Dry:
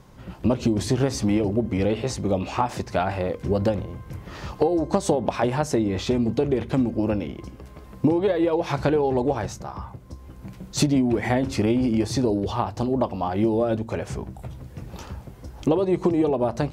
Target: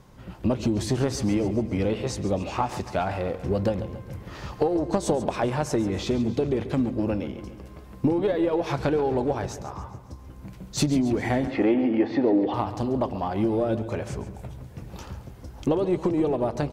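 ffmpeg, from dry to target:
ffmpeg -i in.wav -filter_complex "[0:a]asplit=2[link_01][link_02];[link_02]aeval=exprs='clip(val(0),-1,0.0708)':channel_layout=same,volume=-10dB[link_03];[link_01][link_03]amix=inputs=2:normalize=0,asettb=1/sr,asplit=3[link_04][link_05][link_06];[link_04]atrim=end=11.474[link_07];[link_05]atrim=start=11.47:end=12.54,asetpts=PTS-STARTPTS,afade=type=in:duration=0.004:curve=qsin,afade=type=out:start_time=1.066:duration=0.004:curve=qsin,highpass=240,equalizer=frequency=300:width_type=q:width=4:gain=9,equalizer=frequency=510:width_type=q:width=4:gain=6,equalizer=frequency=770:width_type=q:width=4:gain=9,equalizer=frequency=1900:width_type=q:width=4:gain=9,lowpass=frequency=3200:width=0.5412,lowpass=frequency=3200:width=1.3066[link_08];[link_06]atrim=start=12.536[link_09];[link_07][link_08]acrossfade=duration=0.004:curve1=hsin:curve2=qsin[link_10];[link_10][link_09]acrossfade=duration=0.004:curve1=qsin:curve2=hsin,aecho=1:1:138|276|414|552|690|828:0.2|0.11|0.0604|0.0332|0.0183|0.01,volume=-4.5dB" out.wav

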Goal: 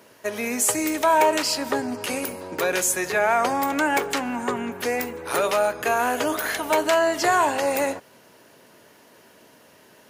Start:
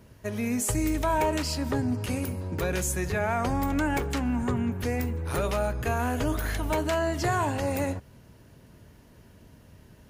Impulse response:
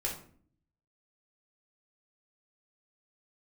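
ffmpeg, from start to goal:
-af "highpass=430,volume=8.5dB"

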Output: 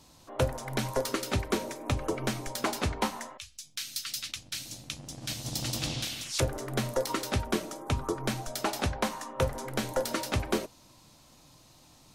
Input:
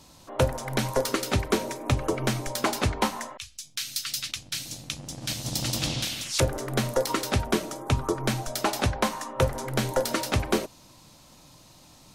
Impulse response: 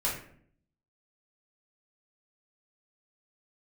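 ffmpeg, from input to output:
-af "flanger=delay=2.6:depth=1.7:regen=-83:speed=0.17:shape=sinusoidal"

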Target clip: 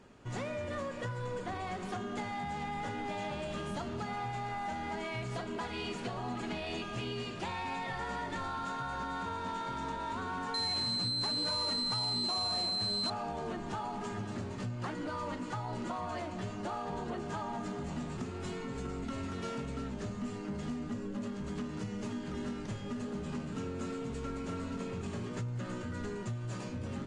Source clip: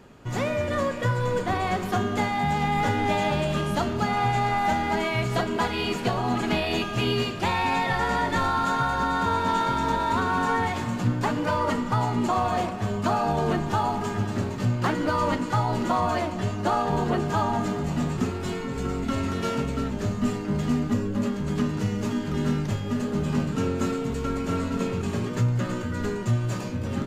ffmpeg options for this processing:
ffmpeg -i in.wav -filter_complex "[0:a]bandreject=frequency=50:width_type=h:width=6,bandreject=frequency=100:width_type=h:width=6,bandreject=frequency=150:width_type=h:width=6,acompressor=threshold=-26dB:ratio=6,asettb=1/sr,asplit=3[link_01][link_02][link_03];[link_01]atrim=end=10.544[link_04];[link_02]atrim=start=10.54:end=13.1,asetpts=PTS-STARTPTS,afade=type=in:duration=0.004:curve=qsin,afade=type=out:start_time=2.556:duration=0.004:curve=qsin,aeval=exprs='val(0)+0.0794*sin(2*PI*4100*n/s)':channel_layout=same[link_05];[link_03]atrim=start=13.096[link_06];[link_04][link_05]acrossfade=duration=0.004:curve1=hsin:curve2=qsin[link_07];[link_07][link_06]acrossfade=duration=0.004:curve1=qsin:curve2=hsin,asoftclip=type=tanh:threshold=-20.5dB,volume=-7.5dB" -ar 22050 -c:a libvorbis -b:a 48k out.ogg

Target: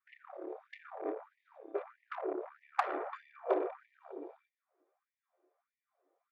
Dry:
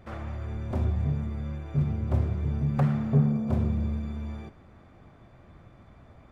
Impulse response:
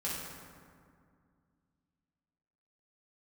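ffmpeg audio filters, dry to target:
-af "anlmdn=10,highpass=110,bandreject=frequency=870:width=24,acompressor=threshold=-29dB:ratio=6,afftfilt=real='re*gte(b*sr/1024,290*pow(1800/290,0.5+0.5*sin(2*PI*1.6*pts/sr)))':imag='im*gte(b*sr/1024,290*pow(1800/290,0.5+0.5*sin(2*PI*1.6*pts/sr)))':win_size=1024:overlap=0.75,volume=12.5dB"

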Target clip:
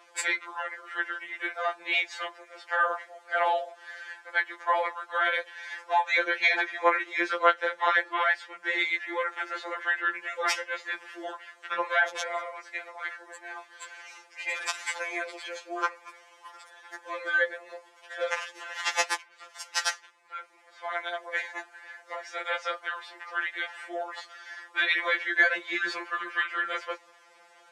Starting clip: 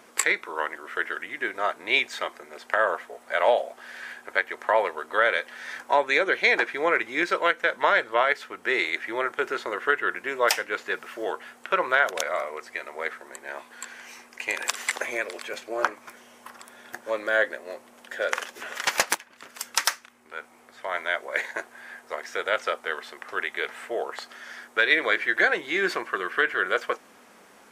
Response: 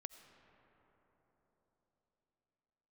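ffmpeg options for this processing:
-af "highpass=530,lowpass=6600,afftfilt=real='re*2.83*eq(mod(b,8),0)':imag='im*2.83*eq(mod(b,8),0)':win_size=2048:overlap=0.75"

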